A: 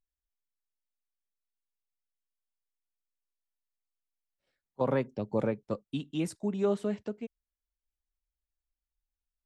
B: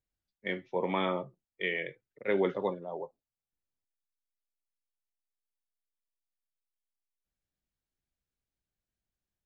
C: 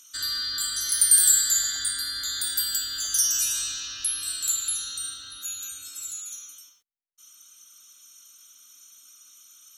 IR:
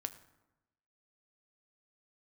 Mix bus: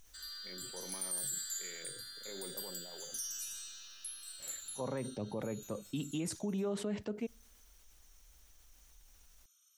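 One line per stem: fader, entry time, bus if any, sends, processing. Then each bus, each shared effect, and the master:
−5.5 dB, 0.00 s, send −20 dB, envelope flattener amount 50%
−14.0 dB, 0.00 s, no send, adaptive Wiener filter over 41 samples; brickwall limiter −26 dBFS, peak gain reduction 9 dB; level that may fall only so fast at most 28 dB per second
−18.0 dB, 0.00 s, no send, high-pass filter 350 Hz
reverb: on, RT60 0.95 s, pre-delay 5 ms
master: brickwall limiter −29 dBFS, peak gain reduction 8.5 dB

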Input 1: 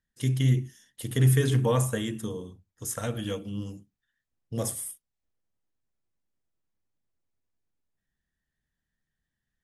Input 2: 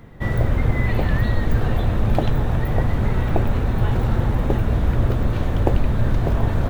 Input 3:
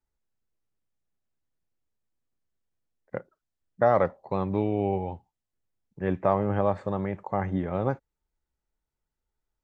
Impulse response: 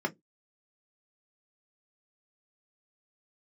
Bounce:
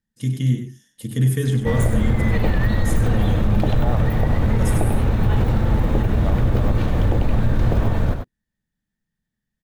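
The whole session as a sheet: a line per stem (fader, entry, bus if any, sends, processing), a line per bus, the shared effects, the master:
−0.5 dB, 0.00 s, send −14 dB, echo send −8.5 dB, parametric band 190 Hz +6.5 dB 1.3 octaves
+2.5 dB, 1.45 s, send −19.5 dB, echo send −9.5 dB, no processing
−8.0 dB, 0.00 s, no send, no echo send, no processing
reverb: on, RT60 0.15 s, pre-delay 3 ms
echo: single-tap delay 97 ms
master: brickwall limiter −9 dBFS, peak gain reduction 8 dB

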